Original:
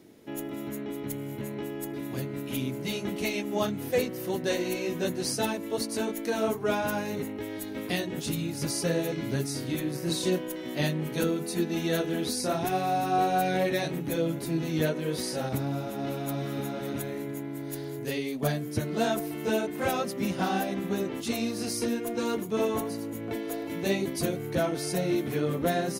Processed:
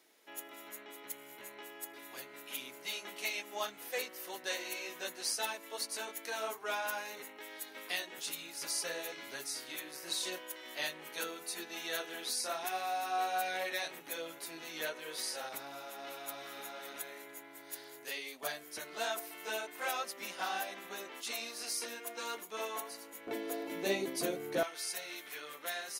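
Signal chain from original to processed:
high-pass filter 920 Hz 12 dB per octave, from 0:23.27 360 Hz, from 0:24.63 1,400 Hz
level −3 dB

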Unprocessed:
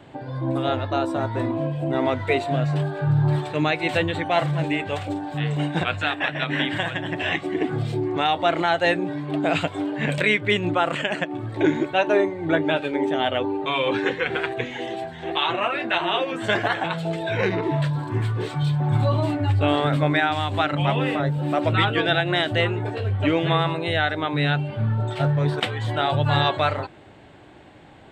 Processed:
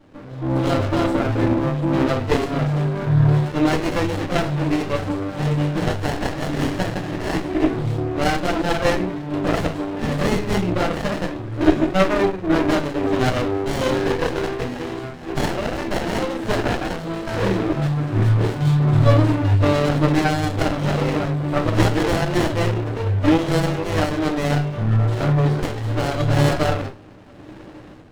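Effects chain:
dynamic equaliser 3,900 Hz, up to +5 dB, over −40 dBFS, Q 2.2
automatic gain control
convolution reverb RT60 0.30 s, pre-delay 4 ms, DRR −5 dB
windowed peak hold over 33 samples
level −8 dB

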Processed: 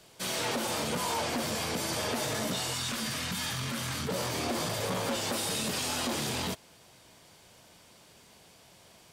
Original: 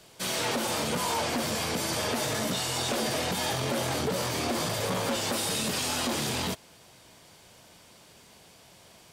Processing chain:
0:02.74–0:04.09: flat-topped bell 520 Hz −11.5 dB
level −2.5 dB

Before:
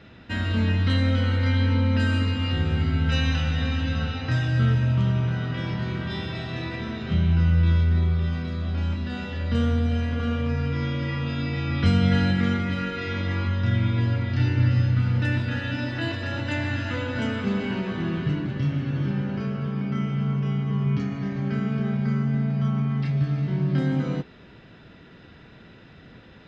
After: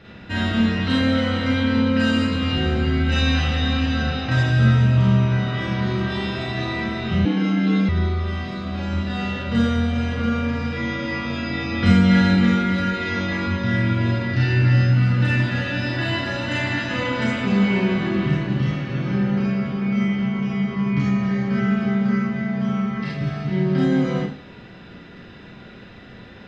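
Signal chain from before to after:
four-comb reverb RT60 0.42 s, combs from 31 ms, DRR −4 dB
0:07.25–0:07.89: frequency shifter +110 Hz
level +1.5 dB

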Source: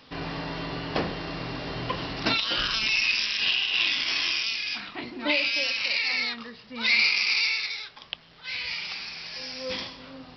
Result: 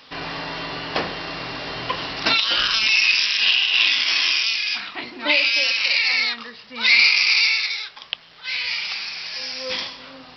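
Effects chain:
low-shelf EQ 450 Hz −11.5 dB
level +7.5 dB

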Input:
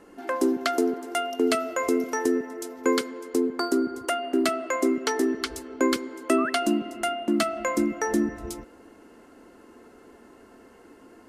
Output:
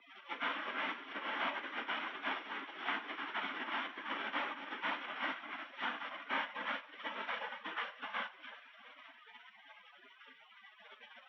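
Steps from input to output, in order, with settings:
linear delta modulator 32 kbit/s, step −22 dBFS
gate on every frequency bin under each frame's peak −30 dB weak
dynamic equaliser 2,100 Hz, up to −3 dB, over −59 dBFS, Q 0.77
brickwall limiter −37 dBFS, peak gain reduction 9 dB
delay with pitch and tempo change per echo 228 ms, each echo +4 semitones, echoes 3
convolution reverb RT60 0.60 s, pre-delay 3 ms, DRR 8 dB
tape wow and flutter 22 cents
single-sideband voice off tune +61 Hz 170–3,000 Hz
expander for the loud parts 1.5 to 1, over −55 dBFS
level +7.5 dB

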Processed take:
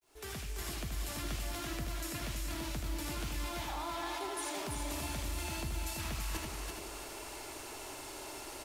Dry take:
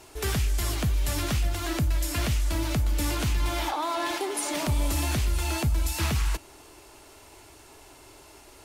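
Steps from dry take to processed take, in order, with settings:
fade in at the beginning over 1.01 s
parametric band 72 Hz −7.5 dB 2.6 octaves
reversed playback
downward compressor 12 to 1, threshold −42 dBFS, peak gain reduction 16.5 dB
reversed playback
log-companded quantiser 8 bits
on a send: single-tap delay 79 ms −6.5 dB
on the sum: feedback echo at a low word length 335 ms, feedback 35%, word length 12 bits, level −3.5 dB
level +3.5 dB

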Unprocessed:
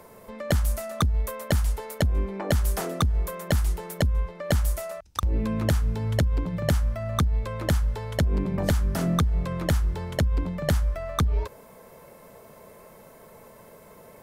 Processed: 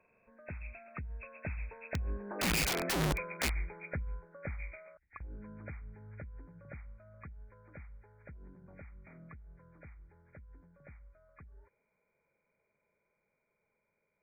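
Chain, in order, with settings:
hearing-aid frequency compression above 1,400 Hz 4 to 1
source passing by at 0:02.85, 13 m/s, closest 4 metres
wrap-around overflow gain 23 dB
level −3.5 dB

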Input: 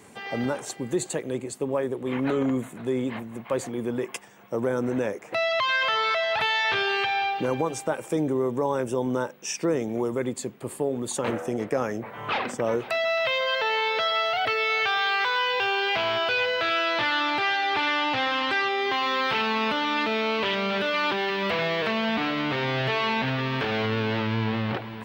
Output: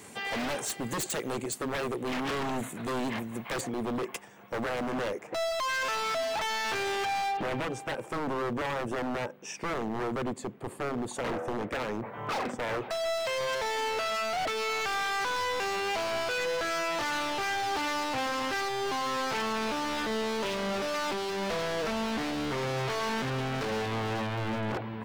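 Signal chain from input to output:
high-shelf EQ 2,400 Hz +6 dB, from 0:03.61 −3.5 dB, from 0:05.27 −12 dB
wave folding −26.5 dBFS

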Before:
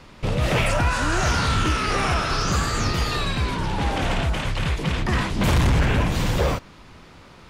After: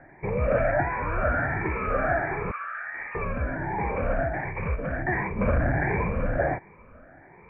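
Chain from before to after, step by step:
rippled gain that drifts along the octave scale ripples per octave 0.81, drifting +1.4 Hz, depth 15 dB
0:02.51–0:03.15: high-pass filter 1,200 Hz 24 dB per octave
bad sample-rate conversion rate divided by 4×, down none, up hold
Chebyshev low-pass with heavy ripple 2,400 Hz, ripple 9 dB

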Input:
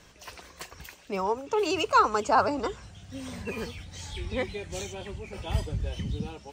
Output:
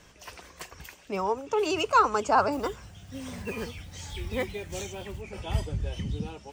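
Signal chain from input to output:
0:02.52–0:05.23: one scale factor per block 5 bits
parametric band 4,100 Hz −4.5 dB 0.23 octaves

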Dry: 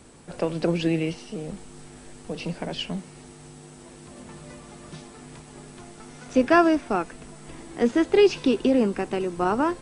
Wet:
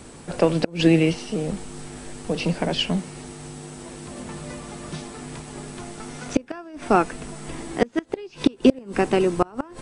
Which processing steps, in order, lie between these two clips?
gate with flip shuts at −12 dBFS, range −29 dB
level +7.5 dB

